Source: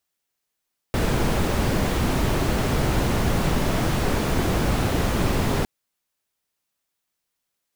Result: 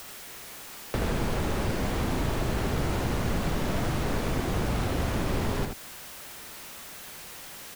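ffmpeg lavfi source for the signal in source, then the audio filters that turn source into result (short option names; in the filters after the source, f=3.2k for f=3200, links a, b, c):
-f lavfi -i "anoisesrc=c=brown:a=0.417:d=4.71:r=44100:seed=1"
-filter_complex "[0:a]aeval=exprs='val(0)+0.5*0.02*sgn(val(0))':c=same,acrossover=split=94|2800[a][b][c];[a]acompressor=threshold=-31dB:ratio=4[d];[b]acompressor=threshold=-30dB:ratio=4[e];[c]acompressor=threshold=-44dB:ratio=4[f];[d][e][f]amix=inputs=3:normalize=0,asplit=2[g][h];[h]aecho=0:1:79:0.531[i];[g][i]amix=inputs=2:normalize=0"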